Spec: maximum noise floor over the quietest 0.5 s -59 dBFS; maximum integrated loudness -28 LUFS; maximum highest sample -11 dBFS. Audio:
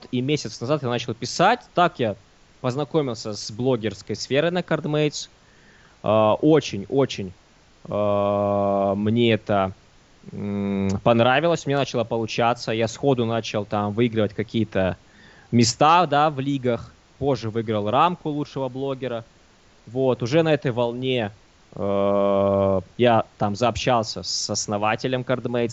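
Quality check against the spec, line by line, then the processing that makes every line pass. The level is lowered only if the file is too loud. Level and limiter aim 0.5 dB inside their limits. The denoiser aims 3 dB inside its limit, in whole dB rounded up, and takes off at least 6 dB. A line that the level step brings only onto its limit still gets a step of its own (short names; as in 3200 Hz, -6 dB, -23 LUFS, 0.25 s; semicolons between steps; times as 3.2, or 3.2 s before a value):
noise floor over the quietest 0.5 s -54 dBFS: fail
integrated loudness -22.5 LUFS: fail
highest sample -3.5 dBFS: fail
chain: gain -6 dB; limiter -11.5 dBFS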